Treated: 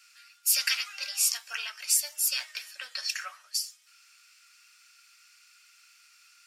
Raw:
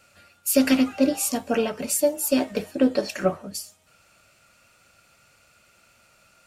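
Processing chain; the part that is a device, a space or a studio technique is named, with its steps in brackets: headphones lying on a table (HPF 1500 Hz 24 dB/oct; bell 5200 Hz +8 dB 0.46 oct)

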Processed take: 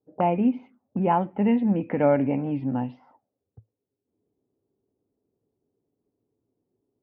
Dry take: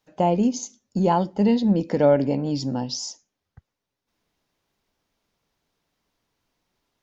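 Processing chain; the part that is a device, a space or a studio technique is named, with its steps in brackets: envelope filter bass rig (envelope low-pass 400–2500 Hz up, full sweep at -24.5 dBFS; speaker cabinet 65–2300 Hz, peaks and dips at 110 Hz +10 dB, 260 Hz +6 dB, 780 Hz +5 dB, 1200 Hz +4 dB); gain -5 dB

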